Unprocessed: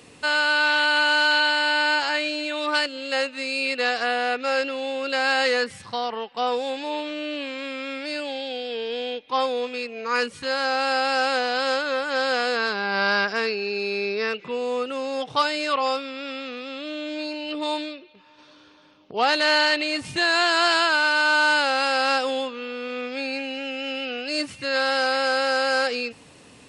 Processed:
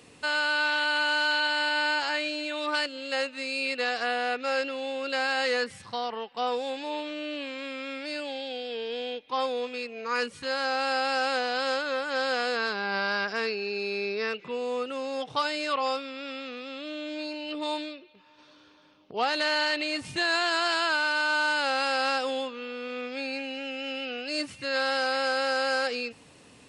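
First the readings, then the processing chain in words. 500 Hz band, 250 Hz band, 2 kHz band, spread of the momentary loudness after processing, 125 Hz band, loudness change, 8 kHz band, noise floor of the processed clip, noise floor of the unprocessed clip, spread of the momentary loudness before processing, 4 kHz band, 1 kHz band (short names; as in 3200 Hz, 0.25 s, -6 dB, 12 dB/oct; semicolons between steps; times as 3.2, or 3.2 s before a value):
-5.0 dB, -5.0 dB, -5.5 dB, 10 LU, n/a, -5.5 dB, -5.5 dB, -55 dBFS, -50 dBFS, 12 LU, -5.5 dB, -5.5 dB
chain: limiter -12.5 dBFS, peak gain reduction 4 dB; gain -4.5 dB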